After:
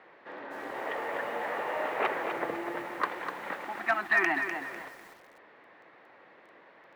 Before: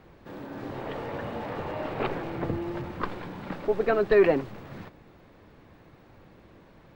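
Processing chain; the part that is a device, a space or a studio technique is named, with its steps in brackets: 3.64–4.47 elliptic band-stop 350–710 Hz; megaphone (BPF 560–2900 Hz; bell 1900 Hz +7.5 dB 0.27 oct; hard clip -19.5 dBFS, distortion -25 dB); lo-fi delay 0.25 s, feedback 35%, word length 9-bit, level -7 dB; gain +3 dB

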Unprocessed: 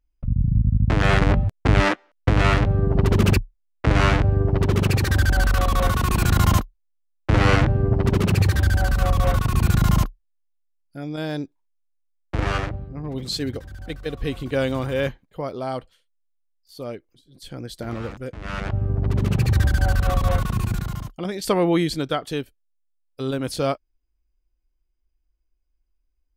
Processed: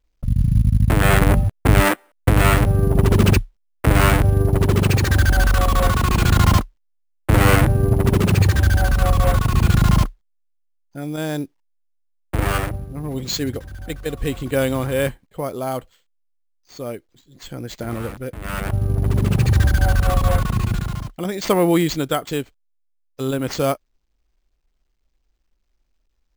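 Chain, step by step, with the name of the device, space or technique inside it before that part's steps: early companding sampler (sample-rate reducer 11000 Hz, jitter 0%; companded quantiser 8-bit); gain +3 dB

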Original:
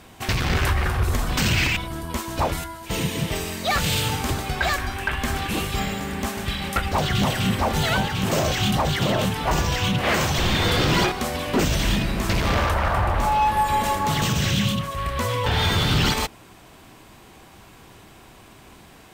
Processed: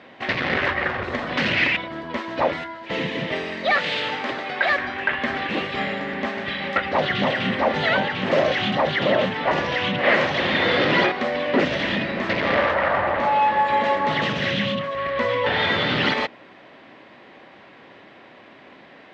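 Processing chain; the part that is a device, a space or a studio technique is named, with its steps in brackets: kitchen radio (speaker cabinet 210–3900 Hz, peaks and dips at 260 Hz +4 dB, 560 Hz +9 dB, 1900 Hz +9 dB); 3.72–4.7 HPF 360 Hz 6 dB/oct

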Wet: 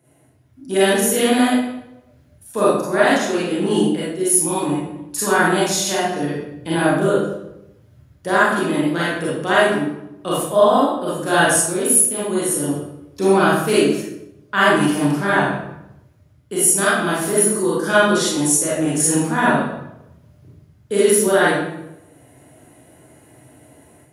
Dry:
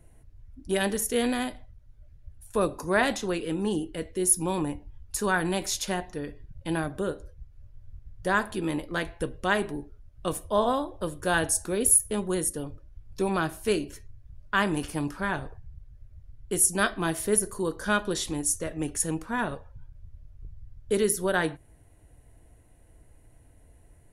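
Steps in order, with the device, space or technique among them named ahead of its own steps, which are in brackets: far laptop microphone (reverb RT60 0.85 s, pre-delay 30 ms, DRR -9 dB; HPF 130 Hz 24 dB/oct; AGC gain up to 7.5 dB); gain -1 dB

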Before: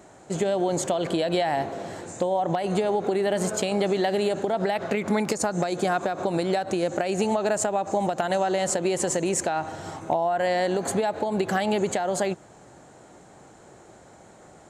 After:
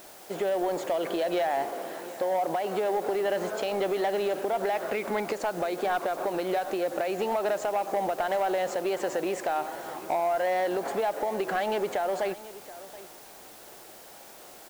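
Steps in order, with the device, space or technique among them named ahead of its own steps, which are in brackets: tape answering machine (BPF 370–3000 Hz; soft clip -19.5 dBFS, distortion -17 dB; wow and flutter; white noise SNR 21 dB); 1.72–2.97 HPF 120 Hz; echo 0.728 s -17 dB

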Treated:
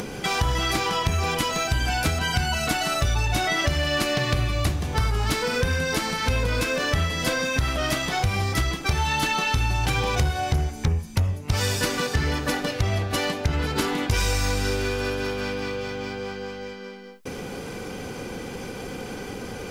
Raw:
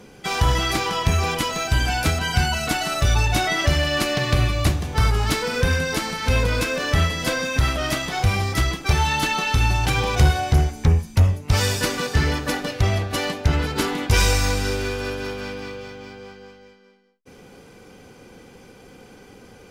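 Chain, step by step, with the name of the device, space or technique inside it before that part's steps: upward and downward compression (upward compressor, threshold -22 dBFS; compressor, threshold -19 dBFS, peak gain reduction 8.5 dB)

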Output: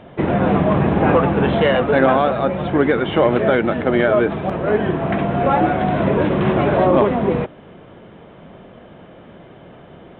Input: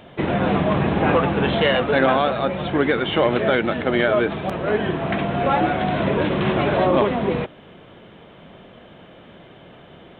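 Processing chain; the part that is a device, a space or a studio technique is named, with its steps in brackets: through cloth (high shelf 3400 Hz -17.5 dB); gain +4 dB

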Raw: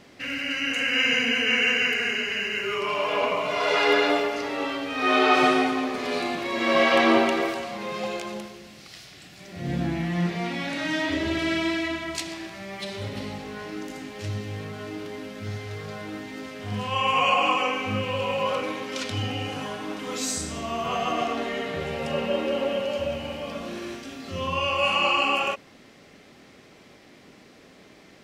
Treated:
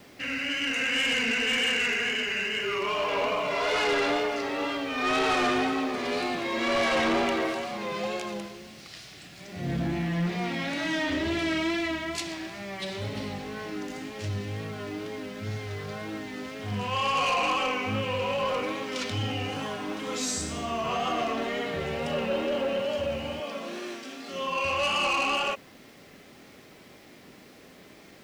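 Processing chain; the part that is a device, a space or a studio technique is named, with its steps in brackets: 23.4–24.65 Bessel high-pass 280 Hz, order 4; compact cassette (soft clip -21.5 dBFS, distortion -11 dB; LPF 11000 Hz; wow and flutter; white noise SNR 35 dB)

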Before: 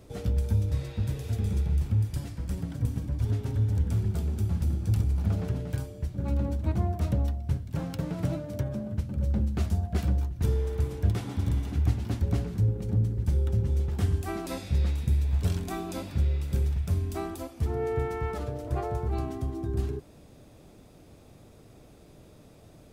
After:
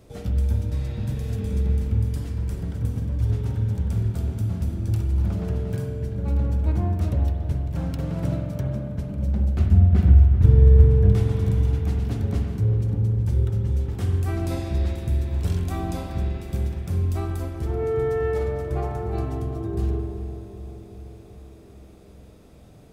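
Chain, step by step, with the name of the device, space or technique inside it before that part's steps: 9.59–11.12 tone controls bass +10 dB, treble -10 dB; dub delay into a spring reverb (darkening echo 0.385 s, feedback 67%, low-pass 1300 Hz, level -10 dB; spring tank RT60 1.6 s, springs 45 ms, chirp 55 ms, DRR 3 dB)

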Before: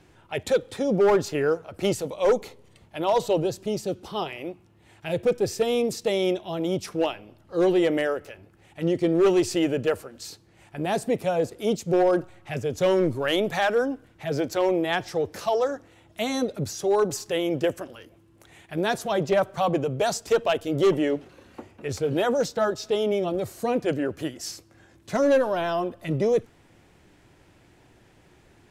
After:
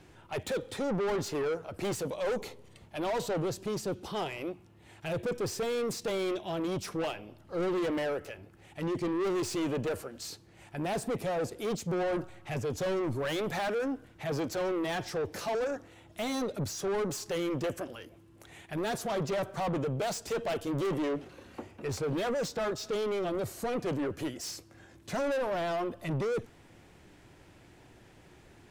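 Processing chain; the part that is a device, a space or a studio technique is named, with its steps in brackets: saturation between pre-emphasis and de-emphasis (high shelf 2300 Hz +8 dB; soft clip -28 dBFS, distortion -6 dB; high shelf 2300 Hz -8 dB)

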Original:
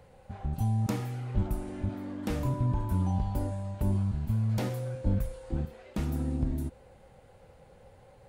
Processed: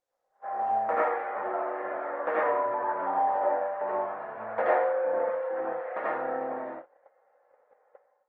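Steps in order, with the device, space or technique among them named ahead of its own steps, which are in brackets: Chebyshev band-pass 510–1800 Hz, order 3; speakerphone in a meeting room (reverb RT60 0.45 s, pre-delay 74 ms, DRR -6 dB; AGC gain up to 17 dB; gate -32 dBFS, range -22 dB; gain -6.5 dB; Opus 20 kbps 48000 Hz)

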